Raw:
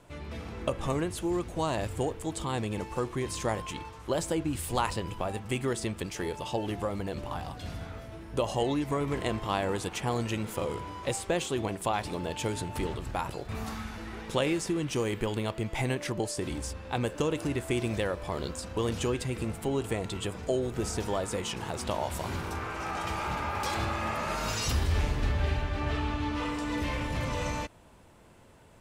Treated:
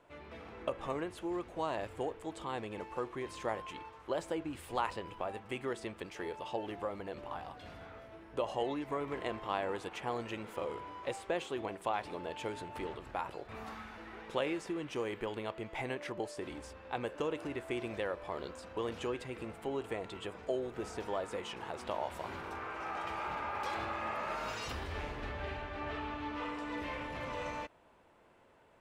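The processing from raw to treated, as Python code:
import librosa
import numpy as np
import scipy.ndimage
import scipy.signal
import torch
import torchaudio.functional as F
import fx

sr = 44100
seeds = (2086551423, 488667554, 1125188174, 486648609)

y = fx.bass_treble(x, sr, bass_db=-12, treble_db=-13)
y = F.gain(torch.from_numpy(y), -4.5).numpy()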